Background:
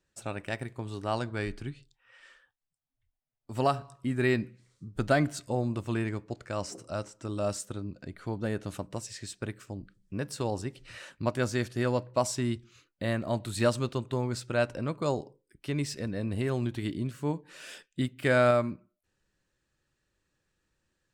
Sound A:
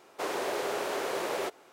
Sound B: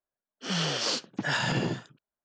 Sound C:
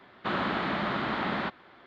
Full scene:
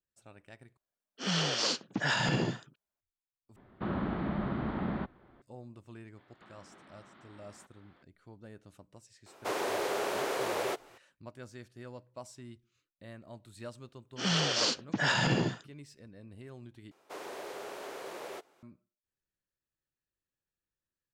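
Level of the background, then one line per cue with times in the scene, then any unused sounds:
background -18.5 dB
0.77 replace with B -1.5 dB
3.56 replace with C -9.5 dB + tilt -4.5 dB/oct
6.17 add C -11 dB + compressor, threshold -45 dBFS
9.26 add A -0.5 dB
13.75 add B
16.91 replace with A -10.5 dB

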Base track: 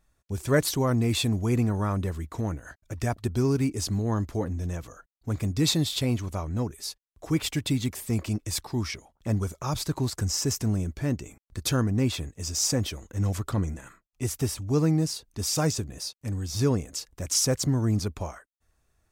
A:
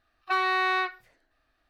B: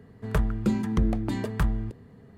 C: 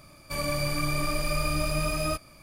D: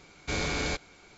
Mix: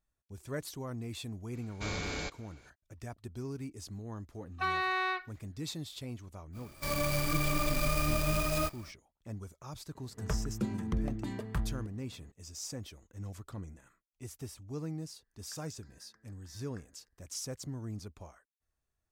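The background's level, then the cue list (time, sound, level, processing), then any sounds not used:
base track -16 dB
1.53 add D -7 dB
4.31 add A -6.5 dB
6.52 add C -2.5 dB, fades 0.05 s + clock jitter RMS 0.037 ms
9.95 add B -9 dB
15.17 add B -16.5 dB + double band-pass 2900 Hz, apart 1.6 oct

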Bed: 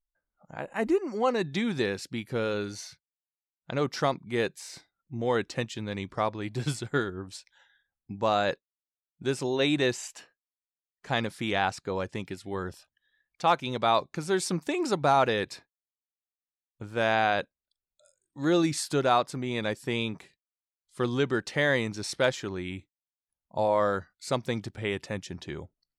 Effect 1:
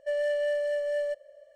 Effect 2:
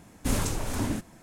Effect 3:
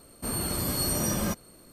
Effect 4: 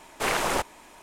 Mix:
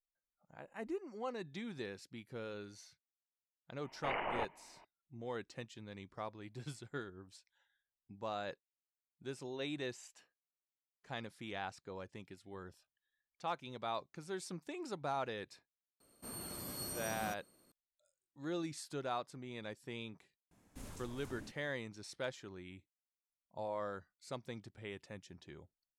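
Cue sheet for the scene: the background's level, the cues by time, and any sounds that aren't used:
bed -16 dB
3.83 add 4 -9.5 dB + rippled Chebyshev low-pass 3000 Hz, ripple 6 dB
16 add 3 -15 dB + low shelf 92 Hz -11.5 dB
20.51 add 2 -17 dB + compressor 1.5:1, threshold -39 dBFS
not used: 1

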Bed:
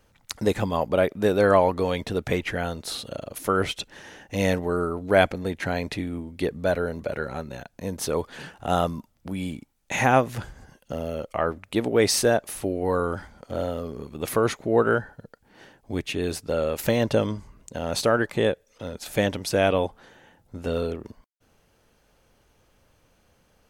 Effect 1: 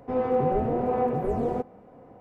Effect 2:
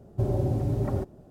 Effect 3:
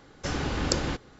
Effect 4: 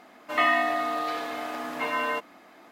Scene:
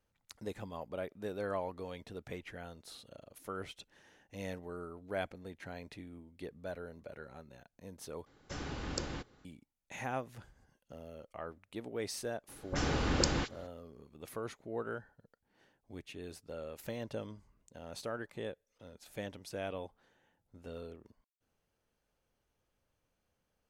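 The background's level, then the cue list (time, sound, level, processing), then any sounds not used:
bed -19 dB
8.26 replace with 3 -11.5 dB
12.48 add 3 -3 dB + dispersion highs, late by 42 ms, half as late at 1600 Hz
not used: 1, 2, 4

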